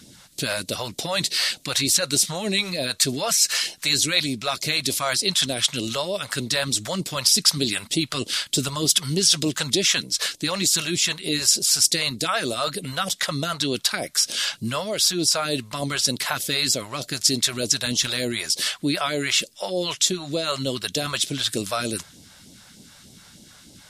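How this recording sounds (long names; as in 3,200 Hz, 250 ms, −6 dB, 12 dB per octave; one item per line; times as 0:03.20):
phaser sweep stages 2, 3.3 Hz, lowest notch 260–1,400 Hz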